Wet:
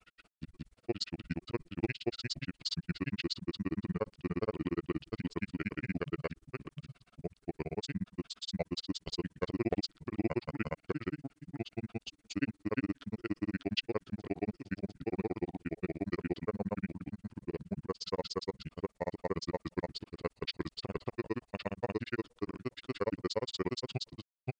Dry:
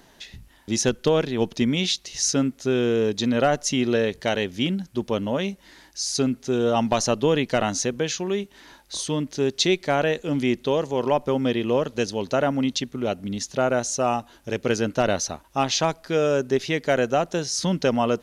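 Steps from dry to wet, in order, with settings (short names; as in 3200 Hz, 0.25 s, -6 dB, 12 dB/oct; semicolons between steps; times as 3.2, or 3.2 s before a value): speed mistake 45 rpm record played at 33 rpm; grains 45 ms, grains 17/s, spray 0.804 s, pitch spread up and down by 0 st; gain -9 dB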